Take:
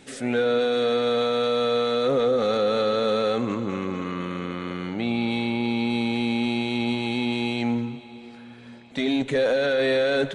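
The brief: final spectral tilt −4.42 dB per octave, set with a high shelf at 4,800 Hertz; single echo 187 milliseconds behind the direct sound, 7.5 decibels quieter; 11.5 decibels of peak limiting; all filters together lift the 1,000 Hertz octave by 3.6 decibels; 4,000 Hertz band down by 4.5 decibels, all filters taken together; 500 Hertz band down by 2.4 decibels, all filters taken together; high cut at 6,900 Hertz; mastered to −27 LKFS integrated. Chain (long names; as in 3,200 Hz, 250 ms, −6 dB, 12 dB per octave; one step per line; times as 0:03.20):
low-pass filter 6,900 Hz
parametric band 500 Hz −4 dB
parametric band 1,000 Hz +7 dB
parametric band 4,000 Hz −3 dB
high-shelf EQ 4,800 Hz −5.5 dB
brickwall limiter −24.5 dBFS
single-tap delay 187 ms −7.5 dB
level +6 dB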